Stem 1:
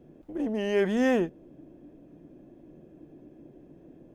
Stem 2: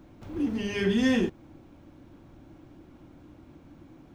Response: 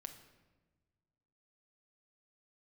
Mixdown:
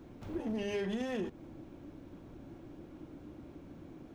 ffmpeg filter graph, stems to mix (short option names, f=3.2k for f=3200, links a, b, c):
-filter_complex "[0:a]acompressor=threshold=-26dB:ratio=6,volume=-3dB[a];[1:a]alimiter=limit=-24dB:level=0:latency=1:release=17,asoftclip=type=tanh:threshold=-28.5dB,volume=-1,volume=-1.5dB[b];[a][b]amix=inputs=2:normalize=0,acompressor=threshold=-36dB:ratio=2"